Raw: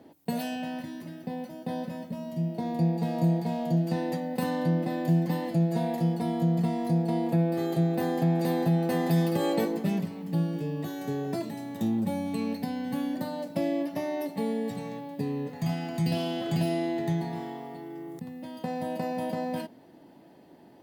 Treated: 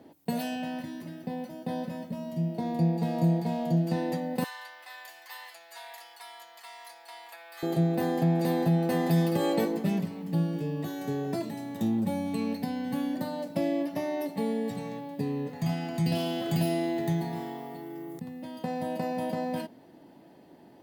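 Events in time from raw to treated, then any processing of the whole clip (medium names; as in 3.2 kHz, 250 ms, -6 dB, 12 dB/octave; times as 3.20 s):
4.44–7.63 s: high-pass 1.1 kHz 24 dB/octave
16.15–18.18 s: treble shelf 11 kHz +11 dB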